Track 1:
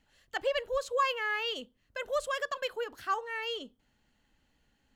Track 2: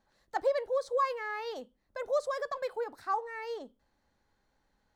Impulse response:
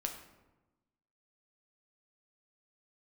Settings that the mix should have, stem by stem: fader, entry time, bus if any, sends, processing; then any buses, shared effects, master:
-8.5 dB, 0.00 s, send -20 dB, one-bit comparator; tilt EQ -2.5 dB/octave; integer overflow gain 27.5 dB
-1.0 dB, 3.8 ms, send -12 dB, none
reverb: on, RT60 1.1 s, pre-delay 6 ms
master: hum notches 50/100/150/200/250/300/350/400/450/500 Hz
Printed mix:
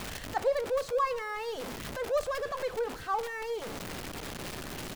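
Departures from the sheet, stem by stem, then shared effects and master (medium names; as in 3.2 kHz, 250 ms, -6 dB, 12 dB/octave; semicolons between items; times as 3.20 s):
stem 2: polarity flipped; master: missing hum notches 50/100/150/200/250/300/350/400/450/500 Hz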